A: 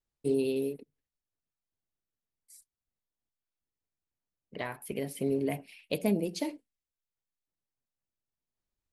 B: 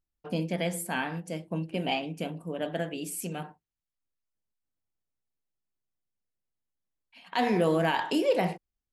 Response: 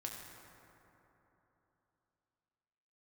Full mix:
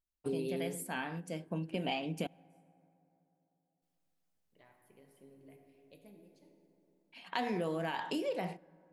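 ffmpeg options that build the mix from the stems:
-filter_complex "[0:a]volume=-5dB,afade=t=out:st=5.92:d=0.48:silence=0.398107,asplit=2[a][b];[b]volume=-21.5dB[c];[1:a]dynaudnorm=f=470:g=9:m=12.5dB,volume=-8dB,asplit=3[d][e][f];[d]atrim=end=2.27,asetpts=PTS-STARTPTS,afade=t=out:st=2.266:d=0.004:c=hsin[g];[e]atrim=start=2.27:end=3.82,asetpts=PTS-STARTPTS,volume=0[h];[f]atrim=start=3.82,asetpts=PTS-STARTPTS,afade=t=in:d=0.004:c=hsin[i];[g][h][i]concat=n=3:v=0:a=1,asplit=3[j][k][l];[k]volume=-23.5dB[m];[l]apad=whole_len=393747[n];[a][n]sidechaingate=range=-33dB:threshold=-52dB:ratio=16:detection=peak[o];[2:a]atrim=start_sample=2205[p];[c][m]amix=inputs=2:normalize=0[q];[q][p]afir=irnorm=-1:irlink=0[r];[o][j][r]amix=inputs=3:normalize=0,acompressor=threshold=-32dB:ratio=5"

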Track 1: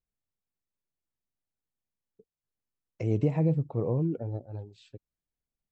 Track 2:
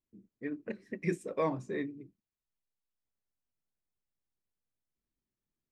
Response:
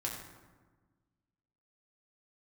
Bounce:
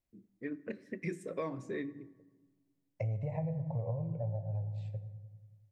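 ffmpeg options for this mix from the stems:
-filter_complex "[0:a]firequalizer=gain_entry='entry(130,0);entry(340,-25);entry(550,5);entry(860,8);entry(1300,-18);entry(2000,1);entry(3000,-12)':delay=0.05:min_phase=1,volume=-2dB,asplit=2[a][b];[b]volume=-4dB[c];[1:a]volume=-1.5dB,asplit=2[d][e];[e]volume=-16.5dB[f];[2:a]atrim=start_sample=2205[g];[c][f]amix=inputs=2:normalize=0[h];[h][g]afir=irnorm=-1:irlink=0[i];[a][d][i]amix=inputs=3:normalize=0,equalizer=f=840:t=o:w=0.31:g=-7.5,acompressor=threshold=-33dB:ratio=6"

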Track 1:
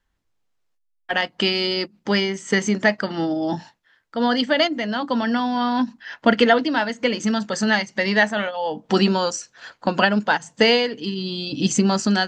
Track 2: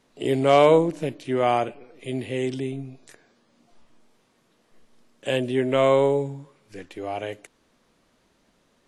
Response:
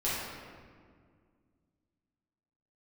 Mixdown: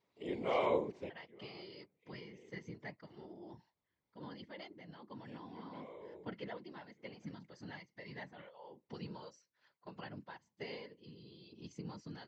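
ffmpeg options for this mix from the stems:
-filter_complex "[0:a]volume=-19.5dB,asplit=2[a][b];[1:a]lowshelf=f=240:g=-11,volume=-4.5dB[c];[b]apad=whole_len=391522[d];[c][d]sidechaincompress=threshold=-57dB:ratio=6:attack=16:release=906[e];[a][e]amix=inputs=2:normalize=0,equalizer=f=1.8k:w=0.51:g=-11.5,afftfilt=real='hypot(re,im)*cos(2*PI*random(0))':imag='hypot(re,im)*sin(2*PI*random(1))':win_size=512:overlap=0.75,highpass=100,equalizer=f=260:t=q:w=4:g=-5,equalizer=f=670:t=q:w=4:g=-3,equalizer=f=1k:t=q:w=4:g=6,equalizer=f=2.1k:t=q:w=4:g=10,lowpass=f=5k:w=0.5412,lowpass=f=5k:w=1.3066"

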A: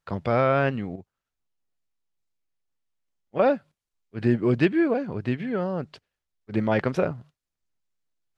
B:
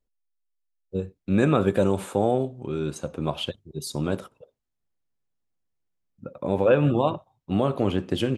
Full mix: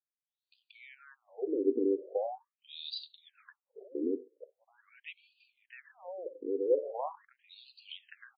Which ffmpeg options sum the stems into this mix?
-filter_complex "[0:a]equalizer=f=200:t=o:w=1.2:g=14,adelay=450,volume=-11.5dB[a];[1:a]equalizer=f=1.9k:t=o:w=1.8:g=-5.5,aexciter=amount=9:drive=4.3:freq=3.7k,asplit=2[b][c];[c]afreqshift=0.48[d];[b][d]amix=inputs=2:normalize=1,volume=0dB,asplit=2[e][f];[f]apad=whole_len=389021[g];[a][g]sidechaincompress=threshold=-45dB:ratio=4:attack=16:release=552[h];[h][e]amix=inputs=2:normalize=0,acrossover=split=450|3000[i][j][k];[j]acompressor=threshold=-37dB:ratio=3[l];[i][l][k]amix=inputs=3:normalize=0,afftfilt=real='re*between(b*sr/1024,340*pow(3500/340,0.5+0.5*sin(2*PI*0.42*pts/sr))/1.41,340*pow(3500/340,0.5+0.5*sin(2*PI*0.42*pts/sr))*1.41)':imag='im*between(b*sr/1024,340*pow(3500/340,0.5+0.5*sin(2*PI*0.42*pts/sr))/1.41,340*pow(3500/340,0.5+0.5*sin(2*PI*0.42*pts/sr))*1.41)':win_size=1024:overlap=0.75"

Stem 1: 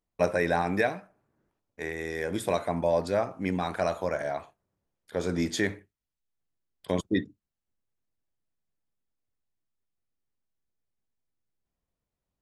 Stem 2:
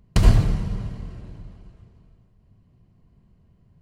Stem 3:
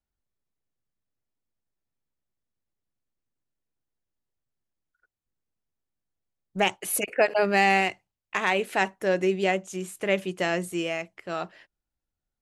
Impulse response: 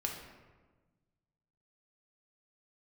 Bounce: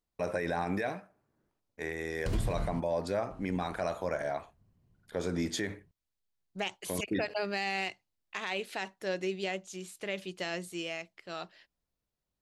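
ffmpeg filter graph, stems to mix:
-filter_complex "[0:a]volume=-2.5dB[a];[1:a]adelay=2100,volume=-11.5dB,asplit=3[b][c][d];[b]atrim=end=2.8,asetpts=PTS-STARTPTS,afade=t=out:st=2.796:d=0.004:c=hsin[e];[c]atrim=start=2.8:end=3.3,asetpts=PTS-STARTPTS,volume=0[f];[d]atrim=start=3.3,asetpts=PTS-STARTPTS,afade=t=in:d=0.004:c=hsin[g];[e][f][g]concat=n=3:v=0:a=1[h];[2:a]equalizer=f=4.3k:t=o:w=1.1:g=11,volume=-10dB,asplit=2[i][j];[j]apad=whole_len=260656[k];[h][k]sidechaincompress=threshold=-38dB:ratio=8:attack=21:release=261[l];[a][l][i]amix=inputs=3:normalize=0,alimiter=limit=-22.5dB:level=0:latency=1:release=49"

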